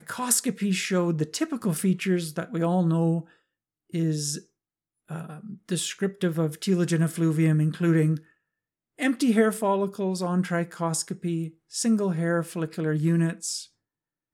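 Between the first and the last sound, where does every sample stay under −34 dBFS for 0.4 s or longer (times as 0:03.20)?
0:03.21–0:03.94
0:04.39–0:05.11
0:08.17–0:09.00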